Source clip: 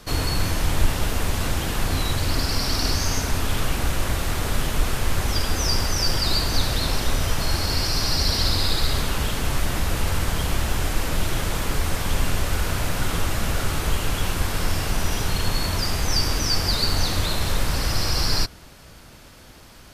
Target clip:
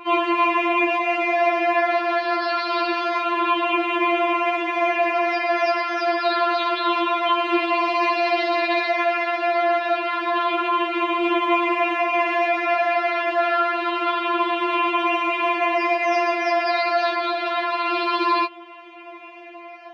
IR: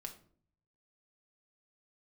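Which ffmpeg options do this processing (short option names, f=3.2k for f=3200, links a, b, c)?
-af "afftfilt=real='re*pow(10,8/40*sin(2*PI*(0.66*log(max(b,1)*sr/1024/100)/log(2)-(-0.27)*(pts-256)/sr)))':imag='im*pow(10,8/40*sin(2*PI*(0.66*log(max(b,1)*sr/1024/100)/log(2)-(-0.27)*(pts-256)/sr)))':win_size=1024:overlap=0.75,highpass=f=160:w=0.5412,highpass=f=160:w=1.3066,equalizer=f=260:t=q:w=4:g=-6,equalizer=f=730:t=q:w=4:g=8,equalizer=f=1.1k:t=q:w=4:g=6,equalizer=f=1.6k:t=q:w=4:g=-3,equalizer=f=2.4k:t=q:w=4:g=6,lowpass=f=2.8k:w=0.5412,lowpass=f=2.8k:w=1.3066,afftfilt=real='re*4*eq(mod(b,16),0)':imag='im*4*eq(mod(b,16),0)':win_size=2048:overlap=0.75,volume=8dB"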